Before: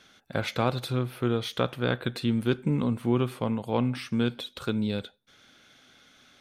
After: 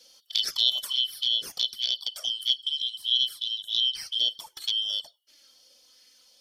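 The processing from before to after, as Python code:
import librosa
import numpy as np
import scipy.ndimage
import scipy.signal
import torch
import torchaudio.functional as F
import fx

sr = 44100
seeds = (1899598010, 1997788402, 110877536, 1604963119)

y = fx.band_shuffle(x, sr, order='3412')
y = F.preemphasis(torch.from_numpy(y), 0.9).numpy()
y = fx.rider(y, sr, range_db=5, speed_s=2.0)
y = fx.peak_eq(y, sr, hz=870.0, db=-5.5, octaves=1.8)
y = fx.env_flanger(y, sr, rest_ms=4.2, full_db=-28.5)
y = fx.bell_lfo(y, sr, hz=1.4, low_hz=540.0, high_hz=2000.0, db=9)
y = y * librosa.db_to_amplitude(8.0)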